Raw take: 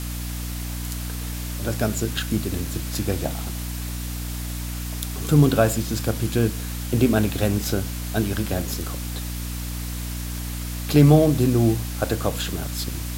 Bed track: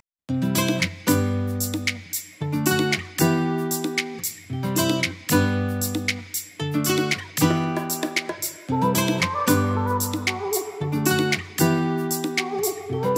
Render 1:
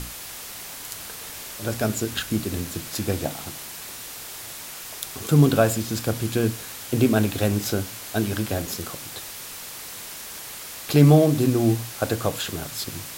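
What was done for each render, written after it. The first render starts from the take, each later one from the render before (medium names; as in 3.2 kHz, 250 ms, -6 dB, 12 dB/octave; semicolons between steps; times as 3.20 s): hum notches 60/120/180/240/300 Hz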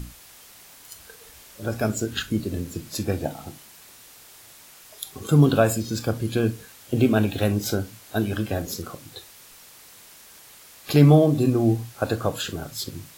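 noise print and reduce 11 dB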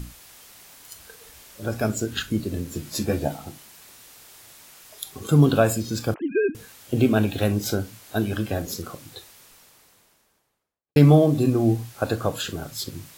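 2.70–3.37 s: doubling 14 ms -3 dB; 6.14–6.55 s: formants replaced by sine waves; 9.02–10.96 s: studio fade out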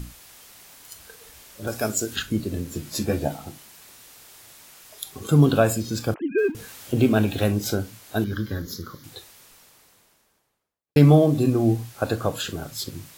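1.67–2.16 s: tone controls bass -7 dB, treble +7 dB; 6.38–7.51 s: companding laws mixed up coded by mu; 8.24–9.04 s: static phaser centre 2.6 kHz, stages 6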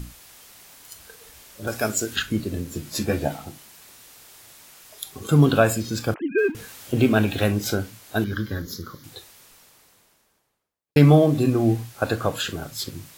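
dynamic bell 1.9 kHz, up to +5 dB, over -40 dBFS, Q 0.77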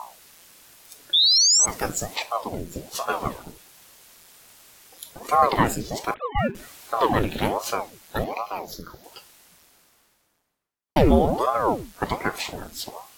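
1.13–1.66 s: painted sound rise 3.4–7.3 kHz -14 dBFS; ring modulator with a swept carrier 510 Hz, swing 85%, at 1.3 Hz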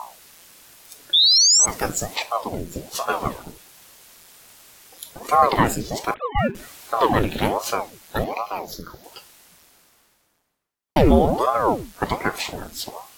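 trim +2.5 dB; peak limiter -3 dBFS, peak gain reduction 1.5 dB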